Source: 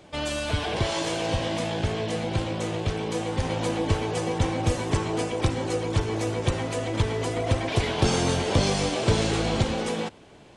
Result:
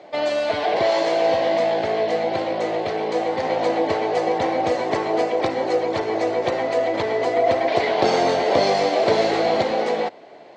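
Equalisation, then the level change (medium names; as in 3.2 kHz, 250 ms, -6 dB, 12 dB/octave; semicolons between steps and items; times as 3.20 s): cabinet simulation 350–7200 Hz, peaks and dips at 690 Hz +6 dB, 2 kHz +10 dB, 4.3 kHz +9 dB; tilt EQ -2 dB/octave; peaking EQ 620 Hz +7.5 dB 1.6 oct; 0.0 dB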